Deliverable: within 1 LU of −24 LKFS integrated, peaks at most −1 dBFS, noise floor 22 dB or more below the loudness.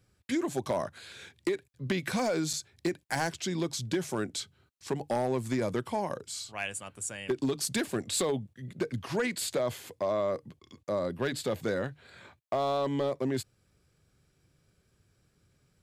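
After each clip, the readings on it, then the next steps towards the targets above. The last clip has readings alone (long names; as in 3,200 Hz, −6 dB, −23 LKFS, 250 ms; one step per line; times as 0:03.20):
share of clipped samples 0.6%; peaks flattened at −22.0 dBFS; number of dropouts 1; longest dropout 4.9 ms; integrated loudness −32.5 LKFS; sample peak −22.0 dBFS; target loudness −24.0 LKFS
→ clipped peaks rebuilt −22 dBFS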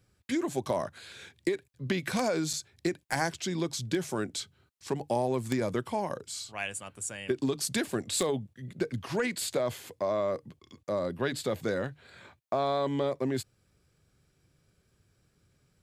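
share of clipped samples 0.0%; number of dropouts 1; longest dropout 4.9 ms
→ repair the gap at 0:02.53, 4.9 ms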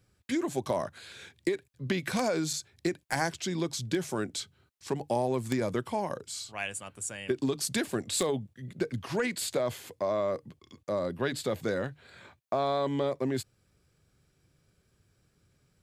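number of dropouts 0; integrated loudness −32.0 LKFS; sample peak −13.0 dBFS; target loudness −24.0 LKFS
→ level +8 dB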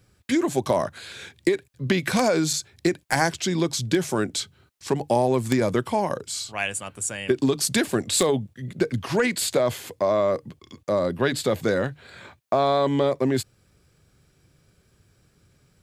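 integrated loudness −24.0 LKFS; sample peak −5.0 dBFS; background noise floor −63 dBFS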